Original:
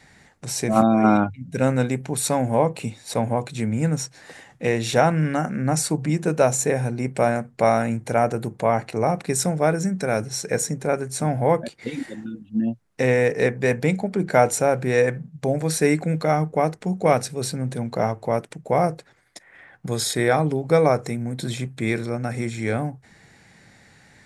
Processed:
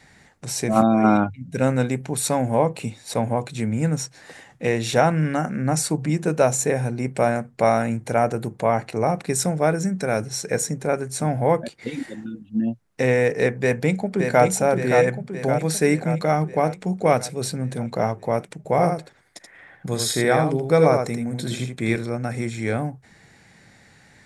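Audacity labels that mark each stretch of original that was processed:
13.620000	14.440000	delay throw 570 ms, feedback 60%, level −5 dB
18.570000	21.960000	single-tap delay 80 ms −5.5 dB

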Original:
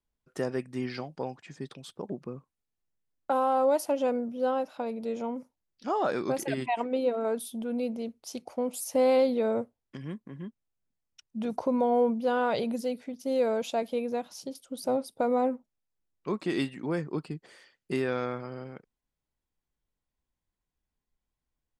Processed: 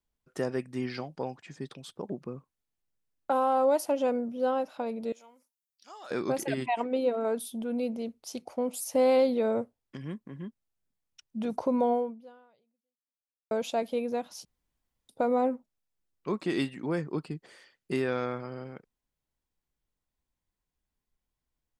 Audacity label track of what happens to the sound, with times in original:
5.120000	6.110000	first difference
11.910000	13.510000	fade out exponential
14.450000	15.090000	fill with room tone

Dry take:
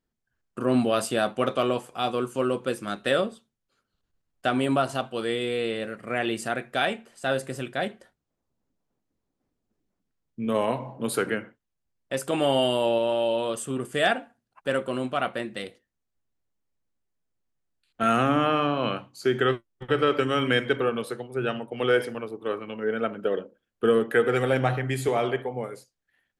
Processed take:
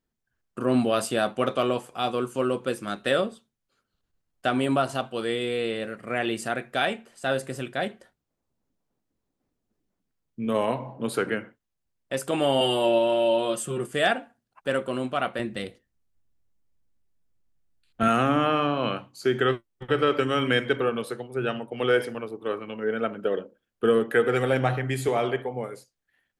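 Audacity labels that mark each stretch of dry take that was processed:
10.740000	11.320000	high-shelf EQ 7,400 Hz −9 dB
12.600000	13.860000	comb filter 5.6 ms, depth 80%
15.390000	18.080000	low-shelf EQ 180 Hz +11 dB

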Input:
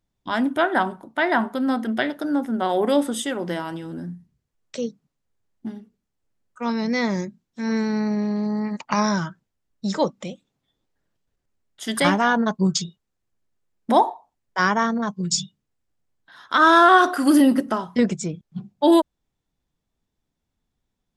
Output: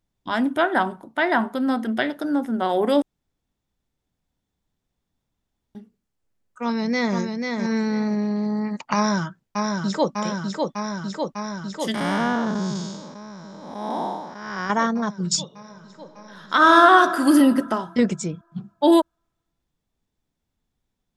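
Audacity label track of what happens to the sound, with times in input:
3.020000	5.750000	fill with room tone
6.630000	7.170000	delay throw 490 ms, feedback 20%, level −4.5 dB
8.950000	10.120000	delay throw 600 ms, feedback 80%, level −3.5 dB
11.940000	14.700000	spectrum smeared in time width 337 ms
15.430000	16.820000	thrown reverb, RT60 2.4 s, DRR 6 dB

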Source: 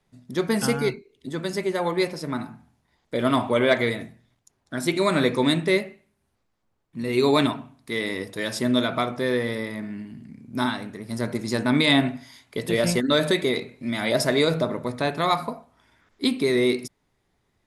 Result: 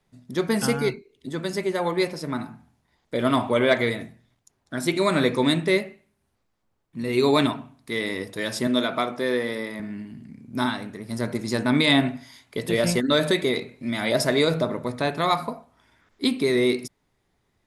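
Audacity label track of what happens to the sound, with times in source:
8.670000	9.800000	high-pass filter 200 Hz

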